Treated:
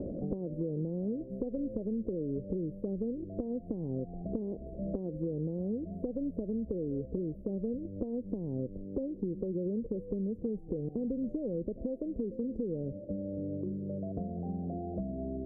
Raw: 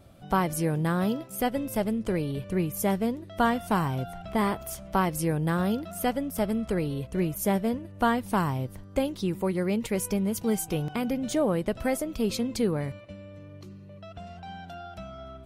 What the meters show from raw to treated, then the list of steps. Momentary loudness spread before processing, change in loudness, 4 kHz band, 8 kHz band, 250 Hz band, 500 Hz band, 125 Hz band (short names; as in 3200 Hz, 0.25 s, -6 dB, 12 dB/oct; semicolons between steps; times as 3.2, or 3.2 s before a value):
16 LU, -8.0 dB, under -40 dB, under -40 dB, -6.0 dB, -6.5 dB, -7.5 dB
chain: limiter -20 dBFS, peak gain reduction 7 dB; bell 110 Hz -14.5 dB 1.2 oct; compressor 6:1, threshold -36 dBFS, peak gain reduction 10 dB; elliptic low-pass 510 Hz, stop band 60 dB; three-band squash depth 100%; gain +6 dB